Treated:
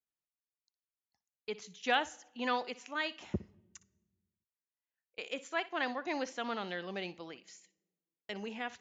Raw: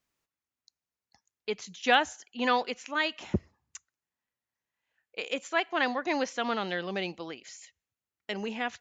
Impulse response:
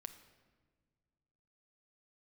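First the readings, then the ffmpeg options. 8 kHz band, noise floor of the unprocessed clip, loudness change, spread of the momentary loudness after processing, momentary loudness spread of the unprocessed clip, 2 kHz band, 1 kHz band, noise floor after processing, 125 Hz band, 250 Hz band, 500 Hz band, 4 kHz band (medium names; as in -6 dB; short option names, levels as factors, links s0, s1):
no reading, under -85 dBFS, -7.0 dB, 17 LU, 21 LU, -7.0 dB, -7.0 dB, under -85 dBFS, -7.0 dB, -7.0 dB, -7.0 dB, -7.0 dB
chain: -filter_complex "[0:a]agate=range=0.251:threshold=0.00398:ratio=16:detection=peak,asplit=2[s0][s1];[1:a]atrim=start_sample=2205,asetrate=61740,aresample=44100,adelay=60[s2];[s1][s2]afir=irnorm=-1:irlink=0,volume=0.355[s3];[s0][s3]amix=inputs=2:normalize=0,volume=0.447"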